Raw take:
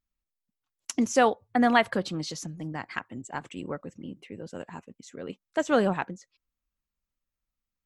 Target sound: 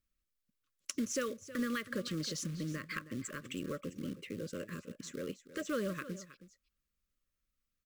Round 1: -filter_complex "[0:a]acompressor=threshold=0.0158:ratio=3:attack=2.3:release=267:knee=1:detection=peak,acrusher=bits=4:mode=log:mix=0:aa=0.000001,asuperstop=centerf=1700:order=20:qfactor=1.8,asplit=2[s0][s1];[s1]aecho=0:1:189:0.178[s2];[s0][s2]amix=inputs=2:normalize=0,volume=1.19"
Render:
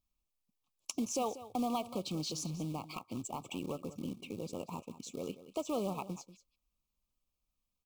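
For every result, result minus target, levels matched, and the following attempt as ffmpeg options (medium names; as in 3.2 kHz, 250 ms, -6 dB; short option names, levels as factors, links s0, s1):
2 kHz band -11.5 dB; echo 129 ms early
-filter_complex "[0:a]acompressor=threshold=0.0158:ratio=3:attack=2.3:release=267:knee=1:detection=peak,acrusher=bits=4:mode=log:mix=0:aa=0.000001,asuperstop=centerf=810:order=20:qfactor=1.8,asplit=2[s0][s1];[s1]aecho=0:1:189:0.178[s2];[s0][s2]amix=inputs=2:normalize=0,volume=1.19"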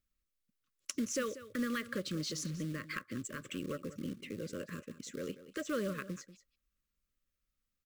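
echo 129 ms early
-filter_complex "[0:a]acompressor=threshold=0.0158:ratio=3:attack=2.3:release=267:knee=1:detection=peak,acrusher=bits=4:mode=log:mix=0:aa=0.000001,asuperstop=centerf=810:order=20:qfactor=1.8,asplit=2[s0][s1];[s1]aecho=0:1:318:0.178[s2];[s0][s2]amix=inputs=2:normalize=0,volume=1.19"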